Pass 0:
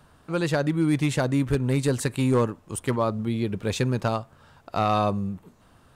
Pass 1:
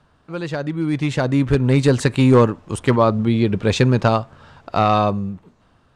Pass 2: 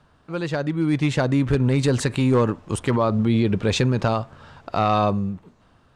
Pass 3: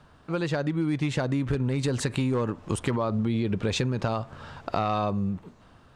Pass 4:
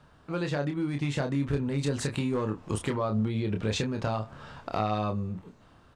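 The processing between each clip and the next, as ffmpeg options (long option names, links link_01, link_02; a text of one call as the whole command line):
ffmpeg -i in.wav -af "lowpass=5700,dynaudnorm=framelen=290:gausssize=9:maxgain=12.5dB,volume=-2dB" out.wav
ffmpeg -i in.wav -af "alimiter=limit=-11.5dB:level=0:latency=1:release=45" out.wav
ffmpeg -i in.wav -af "acompressor=threshold=-26dB:ratio=6,volume=2.5dB" out.wav
ffmpeg -i in.wav -filter_complex "[0:a]asoftclip=type=hard:threshold=-15dB,asplit=2[link_01][link_02];[link_02]adelay=28,volume=-5.5dB[link_03];[link_01][link_03]amix=inputs=2:normalize=0,volume=-3.5dB" out.wav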